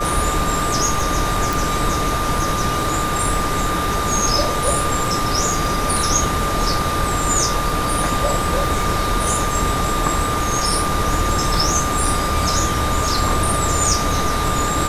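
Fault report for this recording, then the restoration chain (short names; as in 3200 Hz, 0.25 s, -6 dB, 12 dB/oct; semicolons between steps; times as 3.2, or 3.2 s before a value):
crackle 20/s -24 dBFS
tone 1200 Hz -22 dBFS
1.53 pop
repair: de-click; notch 1200 Hz, Q 30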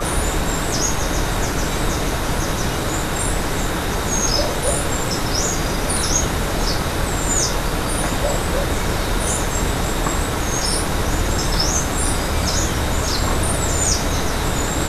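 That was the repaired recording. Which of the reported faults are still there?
none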